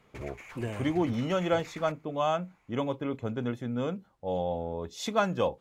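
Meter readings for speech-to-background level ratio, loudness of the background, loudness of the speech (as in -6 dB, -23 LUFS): 15.0 dB, -46.5 LUFS, -31.5 LUFS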